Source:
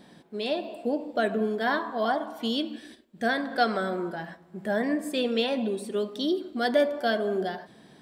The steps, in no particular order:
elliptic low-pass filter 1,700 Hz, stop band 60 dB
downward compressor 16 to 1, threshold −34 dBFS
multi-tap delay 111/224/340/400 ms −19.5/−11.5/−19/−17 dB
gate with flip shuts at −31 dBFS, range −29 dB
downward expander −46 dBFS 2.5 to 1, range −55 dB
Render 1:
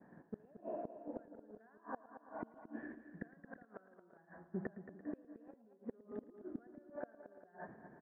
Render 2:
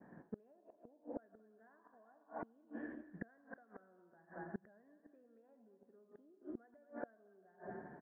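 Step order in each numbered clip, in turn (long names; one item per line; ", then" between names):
elliptic low-pass filter, then downward expander, then downward compressor, then gate with flip, then multi-tap delay
downward compressor, then multi-tap delay, then downward expander, then gate with flip, then elliptic low-pass filter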